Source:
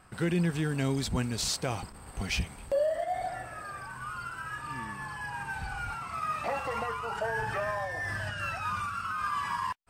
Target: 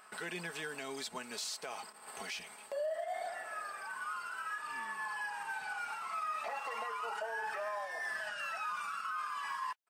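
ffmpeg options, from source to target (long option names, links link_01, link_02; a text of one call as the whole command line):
ffmpeg -i in.wav -af "highpass=590,agate=range=-33dB:threshold=-47dB:ratio=3:detection=peak,acompressor=mode=upward:threshold=-37dB:ratio=2.5,aecho=1:1:4.7:0.48,alimiter=level_in=4dB:limit=-24dB:level=0:latency=1:release=140,volume=-4dB,volume=-2.5dB" out.wav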